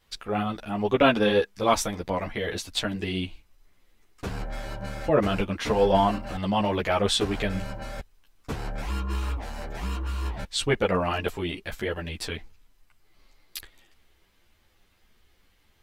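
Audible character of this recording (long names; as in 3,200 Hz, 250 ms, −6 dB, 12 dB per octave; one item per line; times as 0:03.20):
a shimmering, thickened sound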